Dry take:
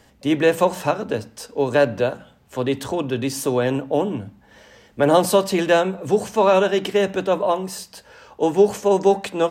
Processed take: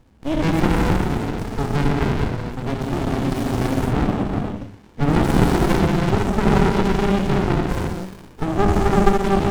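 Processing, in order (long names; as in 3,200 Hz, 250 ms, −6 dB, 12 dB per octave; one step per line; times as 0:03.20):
reverb whose tail is shaped and stops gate 500 ms flat, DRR −4 dB
windowed peak hold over 65 samples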